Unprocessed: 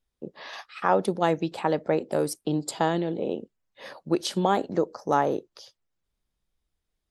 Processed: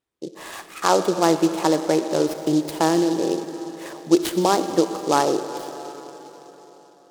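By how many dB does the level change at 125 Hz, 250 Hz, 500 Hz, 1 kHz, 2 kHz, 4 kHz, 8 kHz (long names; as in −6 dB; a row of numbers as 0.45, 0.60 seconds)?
+1.0, +8.0, +5.0, +4.0, +3.5, +7.5, +9.5 decibels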